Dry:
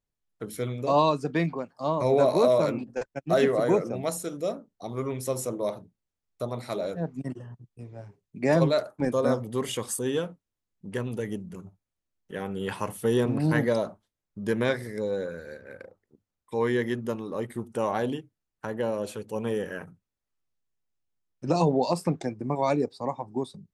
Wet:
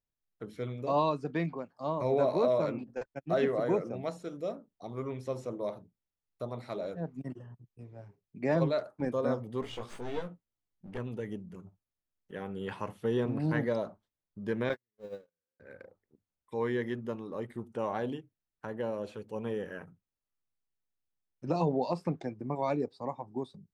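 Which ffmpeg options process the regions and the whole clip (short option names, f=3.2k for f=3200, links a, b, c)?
-filter_complex "[0:a]asettb=1/sr,asplit=3[a][b][c];[a]atrim=end=9.614[d];[b]atrim=start=9.61:end=10.98,asetpts=PTS-STARTPTS,afade=t=in:d=0.004:c=qsin,afade=t=out:st=1.366:d=0.004:c=qsin,aeval=exprs='clip(val(0),-1,0.0119)':c=same,asplit=2[e][f];[f]adelay=17,volume=-4dB[g];[e][g]amix=inputs=2:normalize=0,atrim=end_sample=60417[h];[c]atrim=start=10.976[i];[d][h]acrossfade=d=0.004:c1=hsin:c2=qsin[j];[j][i]acrossfade=d=0.004:c1=qsin:c2=hsin,asettb=1/sr,asplit=3[k][l][m];[k]atrim=end=14.694[n];[l]atrim=start=14.69:end=15.6,asetpts=PTS-STARTPTS,afade=t=in:d=0.004:c=qsin,afade=t=out:st=0.906:d=0.004:c=qsin,aeval=exprs='val(0)+0.5*0.0168*sgn(val(0))':c=same,agate=range=-56dB:threshold=-26dB:ratio=16:release=100:detection=peak[o];[m]atrim=start=15.596[p];[n][o]acrossfade=d=0.004:c1=hsin:c2=qsin[q];[q][p]acrossfade=d=0.004:c1=qsin:c2=hsin,acrossover=split=5600[r][s];[s]acompressor=threshold=-55dB:ratio=4:attack=1:release=60[t];[r][t]amix=inputs=2:normalize=0,equalizer=f=11k:t=o:w=1.9:g=-8,volume=-6dB"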